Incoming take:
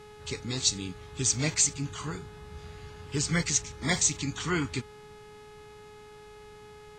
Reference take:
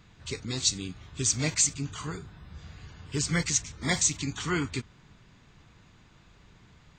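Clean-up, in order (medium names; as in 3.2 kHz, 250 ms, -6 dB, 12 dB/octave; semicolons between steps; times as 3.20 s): de-hum 421.3 Hz, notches 28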